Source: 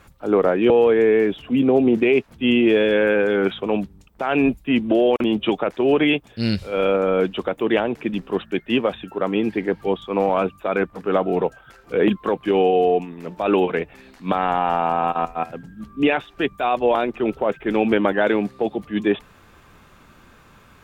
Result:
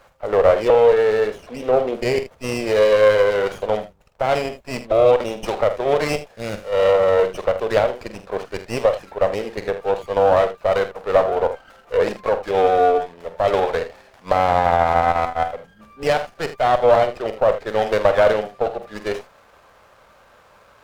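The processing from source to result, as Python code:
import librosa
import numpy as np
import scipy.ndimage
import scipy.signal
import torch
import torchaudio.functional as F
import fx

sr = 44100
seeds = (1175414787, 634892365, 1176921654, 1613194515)

y = fx.low_shelf_res(x, sr, hz=400.0, db=-11.0, q=3.0)
y = fx.room_early_taps(y, sr, ms=(47, 79), db=(-10.5, -13.5))
y = fx.running_max(y, sr, window=9)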